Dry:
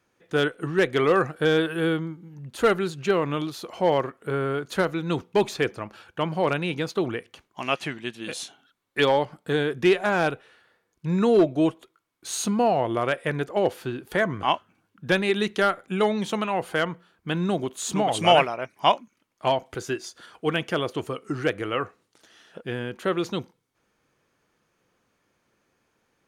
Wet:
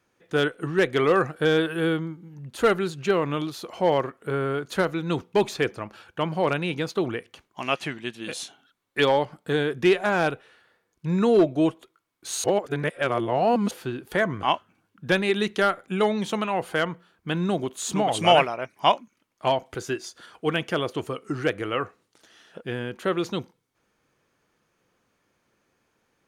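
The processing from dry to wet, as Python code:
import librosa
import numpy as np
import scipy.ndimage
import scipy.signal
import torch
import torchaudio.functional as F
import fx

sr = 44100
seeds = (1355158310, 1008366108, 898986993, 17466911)

y = fx.edit(x, sr, fx.reverse_span(start_s=12.44, length_s=1.27), tone=tone)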